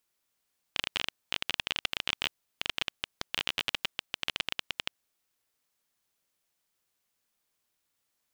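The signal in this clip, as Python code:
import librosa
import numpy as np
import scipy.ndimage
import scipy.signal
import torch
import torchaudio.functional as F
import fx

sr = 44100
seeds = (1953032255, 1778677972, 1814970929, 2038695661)

y = fx.geiger_clicks(sr, seeds[0], length_s=4.24, per_s=19.0, level_db=-11.0)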